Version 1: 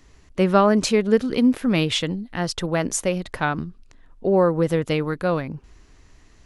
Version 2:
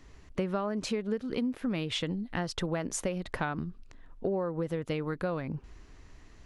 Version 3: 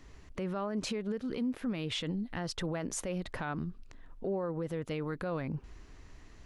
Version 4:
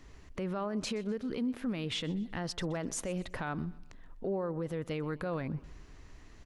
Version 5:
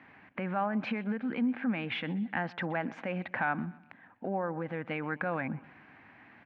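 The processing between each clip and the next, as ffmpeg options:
ffmpeg -i in.wav -af "highshelf=frequency=4900:gain=-7,acompressor=threshold=-27dB:ratio=12,volume=-1dB" out.wav
ffmpeg -i in.wav -af "alimiter=level_in=3dB:limit=-24dB:level=0:latency=1:release=15,volume=-3dB" out.wav
ffmpeg -i in.wav -af "aecho=1:1:125|250|375:0.0891|0.0374|0.0157" out.wav
ffmpeg -i in.wav -af "highpass=frequency=130:width=0.5412,highpass=frequency=130:width=1.3066,equalizer=frequency=150:width_type=q:width=4:gain=-4,equalizer=frequency=230:width_type=q:width=4:gain=4,equalizer=frequency=410:width_type=q:width=4:gain=-9,equalizer=frequency=800:width_type=q:width=4:gain=10,equalizer=frequency=1600:width_type=q:width=4:gain=10,equalizer=frequency=2300:width_type=q:width=4:gain=8,lowpass=frequency=2800:width=0.5412,lowpass=frequency=2800:width=1.3066,volume=1.5dB" out.wav

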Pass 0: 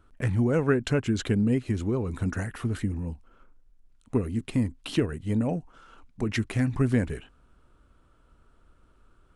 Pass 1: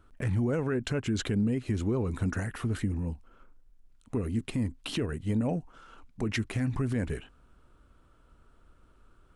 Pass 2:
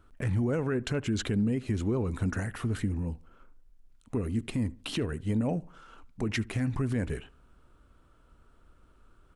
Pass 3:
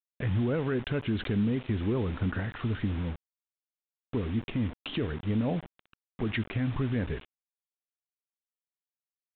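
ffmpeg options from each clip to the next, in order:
ffmpeg -i in.wav -af "alimiter=limit=-21dB:level=0:latency=1:release=74" out.wav
ffmpeg -i in.wav -filter_complex "[0:a]asplit=2[link_01][link_02];[link_02]adelay=74,lowpass=frequency=2100:poles=1,volume=-22dB,asplit=2[link_03][link_04];[link_04]adelay=74,lowpass=frequency=2100:poles=1,volume=0.38,asplit=2[link_05][link_06];[link_06]adelay=74,lowpass=frequency=2100:poles=1,volume=0.38[link_07];[link_01][link_03][link_05][link_07]amix=inputs=4:normalize=0" out.wav
ffmpeg -i in.wav -af "acrusher=bits=6:mix=0:aa=0.000001,aresample=8000,aresample=44100" out.wav

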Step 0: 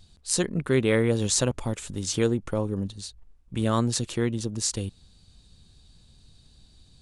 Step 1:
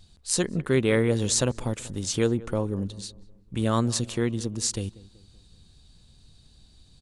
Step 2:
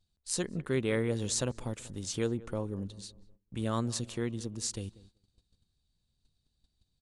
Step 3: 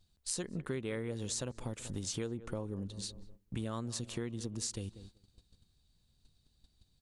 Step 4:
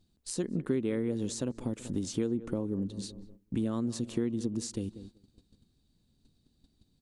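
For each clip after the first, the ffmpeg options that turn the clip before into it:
ffmpeg -i in.wav -filter_complex "[0:a]asplit=2[link_01][link_02];[link_02]adelay=190,lowpass=frequency=1300:poles=1,volume=-19dB,asplit=2[link_03][link_04];[link_04]adelay=190,lowpass=frequency=1300:poles=1,volume=0.48,asplit=2[link_05][link_06];[link_06]adelay=190,lowpass=frequency=1300:poles=1,volume=0.48,asplit=2[link_07][link_08];[link_08]adelay=190,lowpass=frequency=1300:poles=1,volume=0.48[link_09];[link_01][link_03][link_05][link_07][link_09]amix=inputs=5:normalize=0" out.wav
ffmpeg -i in.wav -af "agate=range=-15dB:threshold=-49dB:ratio=16:detection=peak,volume=-8dB" out.wav
ffmpeg -i in.wav -af "acompressor=threshold=-42dB:ratio=5,volume=6dB" out.wav
ffmpeg -i in.wav -af "equalizer=frequency=270:width=0.83:gain=13.5,volume=-2dB" out.wav

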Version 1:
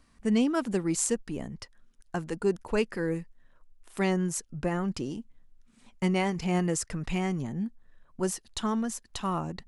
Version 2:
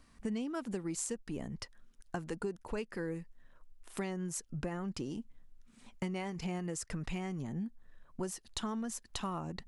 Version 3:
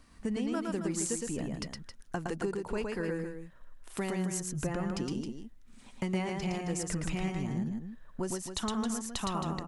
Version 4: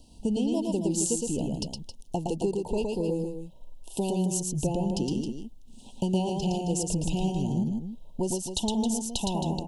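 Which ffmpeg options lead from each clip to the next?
ffmpeg -i in.wav -af "acompressor=threshold=-35dB:ratio=6" out.wav
ffmpeg -i in.wav -af "aecho=1:1:113.7|268.2:0.708|0.355,volume=3dB" out.wav
ffmpeg -i in.wav -af "asuperstop=centerf=1600:order=20:qfactor=0.92,volume=6dB" out.wav

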